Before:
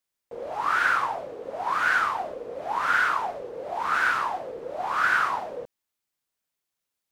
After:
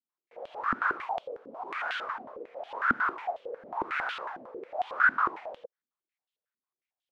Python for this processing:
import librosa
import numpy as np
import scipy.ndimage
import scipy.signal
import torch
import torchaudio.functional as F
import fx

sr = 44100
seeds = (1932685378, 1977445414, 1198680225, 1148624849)

y = fx.peak_eq(x, sr, hz=1800.0, db=-9.0, octaves=0.78, at=(1.02, 1.71))
y = fx.filter_held_bandpass(y, sr, hz=11.0, low_hz=250.0, high_hz=3200.0)
y = y * 10.0 ** (3.5 / 20.0)